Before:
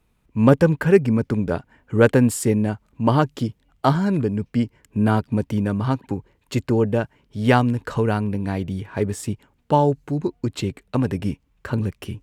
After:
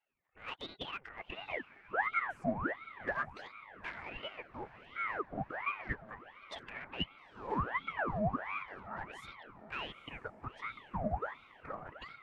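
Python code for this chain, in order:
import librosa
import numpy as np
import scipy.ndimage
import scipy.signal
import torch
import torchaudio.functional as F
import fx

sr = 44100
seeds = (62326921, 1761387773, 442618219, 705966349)

p1 = fx.spec_quant(x, sr, step_db=30)
p2 = 10.0 ** (-27.5 / 20.0) * np.tanh(p1 / 10.0 ** (-27.5 / 20.0))
p3 = fx.wah_lfo(p2, sr, hz=0.34, low_hz=400.0, high_hz=2100.0, q=12.0)
p4 = p3 + fx.echo_diffused(p3, sr, ms=892, feedback_pct=54, wet_db=-15.5, dry=0)
p5 = fx.ring_lfo(p4, sr, carrier_hz=1000.0, swing_pct=80, hz=1.4)
y = p5 * librosa.db_to_amplitude(10.5)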